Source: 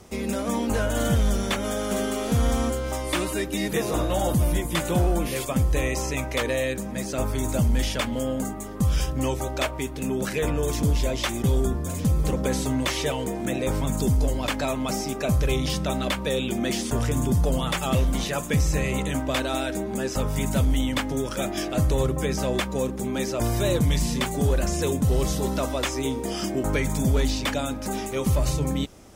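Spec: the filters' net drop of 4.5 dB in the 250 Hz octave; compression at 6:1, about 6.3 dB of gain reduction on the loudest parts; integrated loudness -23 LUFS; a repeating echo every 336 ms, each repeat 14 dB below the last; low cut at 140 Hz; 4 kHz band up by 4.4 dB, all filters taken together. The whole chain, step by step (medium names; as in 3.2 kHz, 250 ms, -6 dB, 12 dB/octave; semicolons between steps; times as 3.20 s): high-pass 140 Hz; peaking EQ 250 Hz -5 dB; peaking EQ 4 kHz +5.5 dB; compression 6:1, threshold -27 dBFS; feedback delay 336 ms, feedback 20%, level -14 dB; trim +8 dB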